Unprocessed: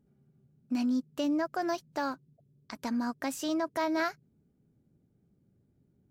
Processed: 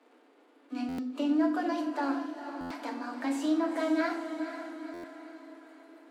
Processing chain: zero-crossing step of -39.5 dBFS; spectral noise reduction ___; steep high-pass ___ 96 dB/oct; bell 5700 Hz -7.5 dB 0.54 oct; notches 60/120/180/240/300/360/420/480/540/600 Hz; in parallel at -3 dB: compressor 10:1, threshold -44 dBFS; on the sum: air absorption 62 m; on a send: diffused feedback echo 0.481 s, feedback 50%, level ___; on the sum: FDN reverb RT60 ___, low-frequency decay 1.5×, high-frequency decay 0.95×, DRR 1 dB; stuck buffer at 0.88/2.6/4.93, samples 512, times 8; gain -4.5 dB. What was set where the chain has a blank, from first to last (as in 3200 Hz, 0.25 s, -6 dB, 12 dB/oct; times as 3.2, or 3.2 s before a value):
13 dB, 250 Hz, -8.5 dB, 0.59 s